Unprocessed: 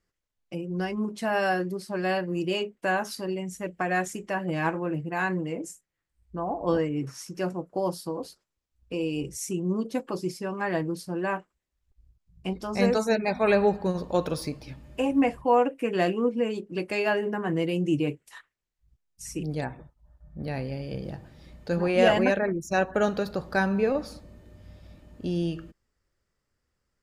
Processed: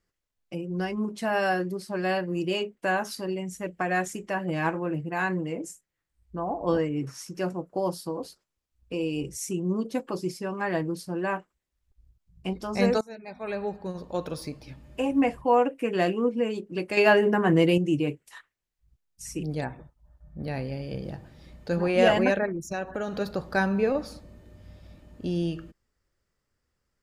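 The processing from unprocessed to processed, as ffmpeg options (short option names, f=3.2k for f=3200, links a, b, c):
-filter_complex "[0:a]asettb=1/sr,asplit=3[a][b][c];[a]atrim=end=16.974[d];[b]atrim=start=16.97:end=17.78,asetpts=PTS-STARTPTS,afade=t=in:d=0.004:c=qsin,afade=t=out:st=0.806:d=0.004:c=qsin,acontrast=73[e];[c]atrim=start=17.776[f];[d][e]acrossfade=d=0.004:c1=hsin:c2=qsin[g];[g][f]acrossfade=d=0.004:c1=qsin:c2=hsin,asplit=3[h][i][j];[h]afade=t=out:st=22.45:d=0.02[k];[i]acompressor=threshold=-27dB:ratio=6:attack=3.2:release=140:knee=1:detection=peak,afade=t=in:st=22.45:d=0.02,afade=t=out:st=23.19:d=0.02[l];[j]afade=t=in:st=23.19:d=0.02[m];[k][l][m]amix=inputs=3:normalize=0,asplit=2[n][o];[n]atrim=end=13.01,asetpts=PTS-STARTPTS,afade=t=out:st=13.006:d=0.004:c=hsin:silence=0.0794328[p];[o]atrim=start=13.01,asetpts=PTS-STARTPTS,afade=t=in:d=2.31:silence=0.0794328[q];[p][q]concat=n=2:v=0:a=1"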